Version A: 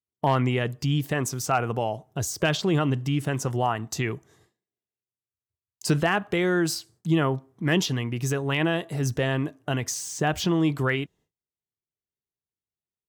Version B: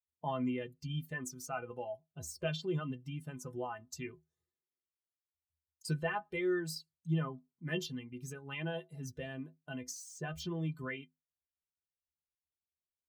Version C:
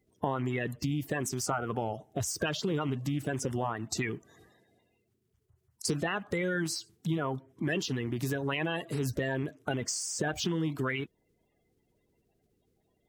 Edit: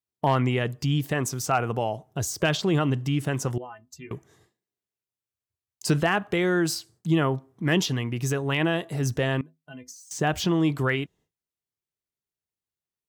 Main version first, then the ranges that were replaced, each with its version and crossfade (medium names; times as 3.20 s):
A
3.58–4.11 s: from B
9.41–10.11 s: from B
not used: C